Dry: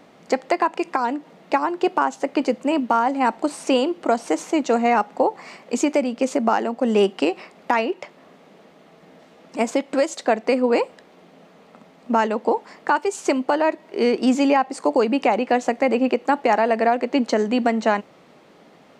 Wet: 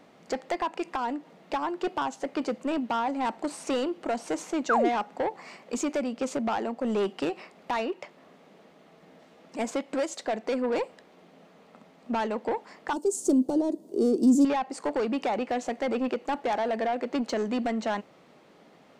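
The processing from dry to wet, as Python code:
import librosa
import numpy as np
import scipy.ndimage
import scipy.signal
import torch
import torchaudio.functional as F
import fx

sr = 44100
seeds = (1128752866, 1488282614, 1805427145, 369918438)

y = 10.0 ** (-16.5 / 20.0) * np.tanh(x / 10.0 ** (-16.5 / 20.0))
y = fx.spec_paint(y, sr, seeds[0], shape='fall', start_s=4.69, length_s=0.2, low_hz=270.0, high_hz=1700.0, level_db=-18.0)
y = fx.curve_eq(y, sr, hz=(120.0, 300.0, 2200.0, 3400.0, 8900.0), db=(0, 10, -25, -10, 10), at=(12.93, 14.45))
y = y * librosa.db_to_amplitude(-5.5)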